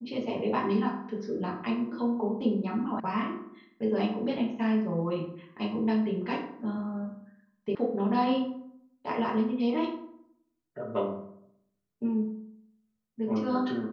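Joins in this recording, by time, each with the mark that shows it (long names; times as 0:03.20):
0:03.00: cut off before it has died away
0:07.75: cut off before it has died away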